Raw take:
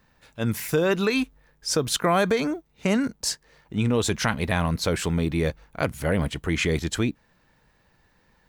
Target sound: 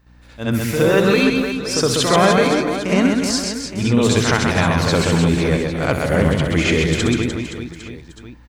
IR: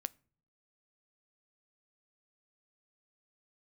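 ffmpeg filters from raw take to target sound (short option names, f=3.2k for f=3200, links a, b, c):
-filter_complex "[0:a]aeval=exprs='val(0)+0.00178*(sin(2*PI*60*n/s)+sin(2*PI*2*60*n/s)/2+sin(2*PI*3*60*n/s)/3+sin(2*PI*4*60*n/s)/4+sin(2*PI*5*60*n/s)/5)':c=same,aecho=1:1:130|299|518.7|804.3|1176:0.631|0.398|0.251|0.158|0.1,asplit=2[a][b];[1:a]atrim=start_sample=2205,lowpass=7.4k,adelay=66[c];[b][c]afir=irnorm=-1:irlink=0,volume=8dB[d];[a][d]amix=inputs=2:normalize=0,volume=-1dB"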